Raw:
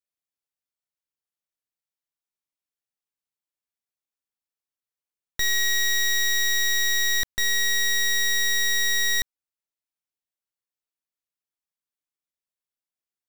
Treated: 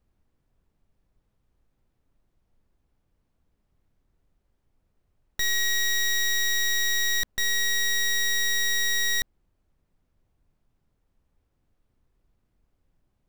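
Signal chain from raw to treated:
background noise brown −67 dBFS
level −2 dB

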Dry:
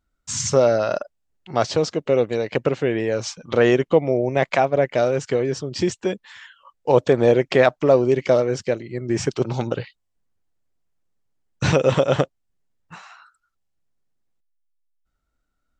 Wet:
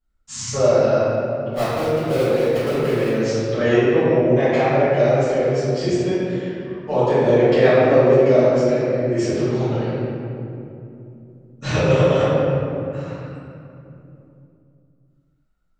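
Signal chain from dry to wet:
0:01.53–0:03.09: gap after every zero crossing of 0.19 ms
convolution reverb RT60 2.8 s, pre-delay 4 ms, DRR −18 dB
level −16.5 dB

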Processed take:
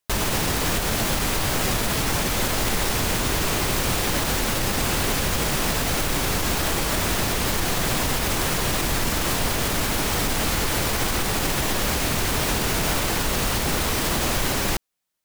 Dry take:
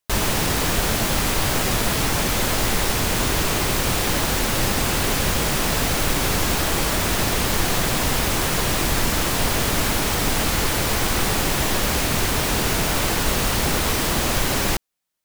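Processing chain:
brickwall limiter −13 dBFS, peak gain reduction 5.5 dB

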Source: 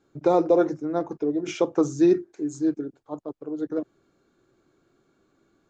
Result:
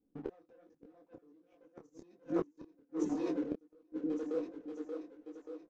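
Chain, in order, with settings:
hum removal 187.3 Hz, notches 36
low-pass that shuts in the quiet parts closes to 390 Hz, open at −19.5 dBFS
high-shelf EQ 6,100 Hz +10 dB
comb filter 4 ms, depth 88%
leveller curve on the samples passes 2
output level in coarse steps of 19 dB
echo with a time of its own for lows and highs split 340 Hz, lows 309 ms, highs 581 ms, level −9 dB
gate with flip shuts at −20 dBFS, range −39 dB
high-frequency loss of the air 53 metres
micro pitch shift up and down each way 45 cents
level +1 dB

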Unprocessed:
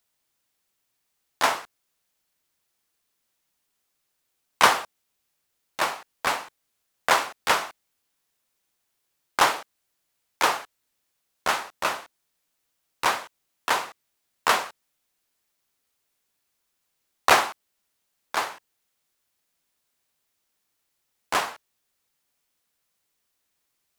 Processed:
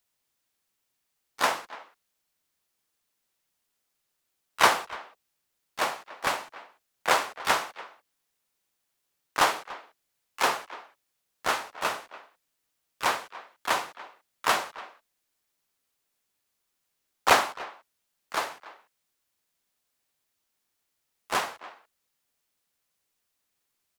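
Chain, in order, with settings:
far-end echo of a speakerphone 290 ms, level −17 dB
pitch-shifted copies added −5 semitones −8 dB, +4 semitones −12 dB
level −3.5 dB

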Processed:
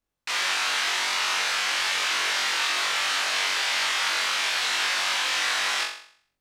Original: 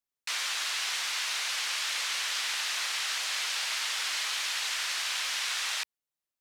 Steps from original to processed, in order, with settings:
spectral tilt −3 dB per octave
on a send: flutter between parallel walls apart 3.7 metres, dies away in 0.54 s
on the sum: level +7.5 dB

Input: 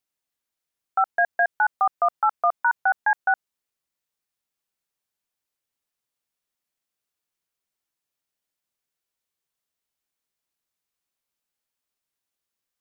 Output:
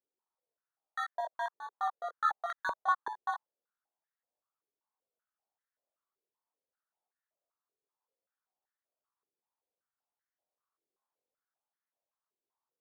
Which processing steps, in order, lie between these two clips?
parametric band 590 Hz −3.5 dB 1 octave
decimation without filtering 17×
tape wow and flutter 21 cents
multi-voice chorus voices 2, 0.23 Hz, delay 20 ms, depth 3.4 ms
band-pass on a step sequencer 5.2 Hz 410–1,800 Hz

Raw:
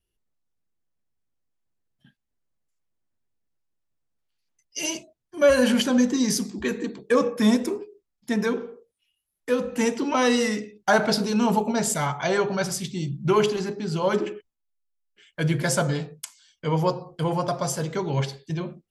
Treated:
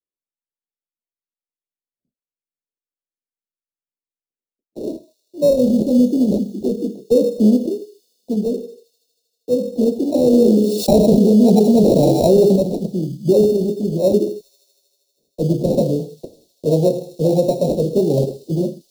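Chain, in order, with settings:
noise gate with hold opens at −43 dBFS
sample-rate reduction 1,600 Hz, jitter 0%
elliptic band-stop filter 560–4,300 Hz, stop band 70 dB
three-way crossover with the lows and the highs turned down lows −16 dB, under 220 Hz, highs −16 dB, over 2,500 Hz
delay with a high-pass on its return 79 ms, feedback 83%, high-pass 3,500 Hz, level −16 dB
dynamic equaliser 200 Hz, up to +6 dB, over −43 dBFS, Q 2.4
speech leveller within 5 dB 2 s
boost into a limiter +14 dB
0:10.33–0:12.56: envelope flattener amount 70%
level −3.5 dB

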